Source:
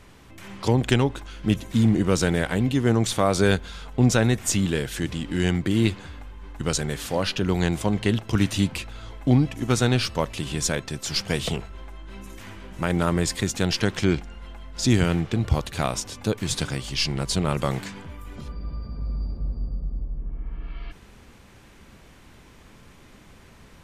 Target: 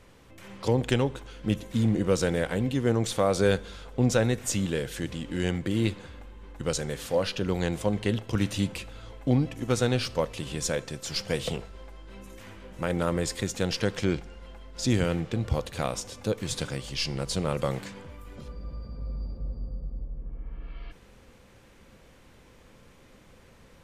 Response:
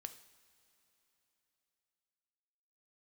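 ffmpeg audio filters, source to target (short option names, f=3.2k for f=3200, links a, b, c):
-filter_complex "[0:a]equalizer=f=510:w=5.1:g=9,asplit=2[a][b];[1:a]atrim=start_sample=2205[c];[b][c]afir=irnorm=-1:irlink=0,volume=-1dB[d];[a][d]amix=inputs=2:normalize=0,volume=-9dB"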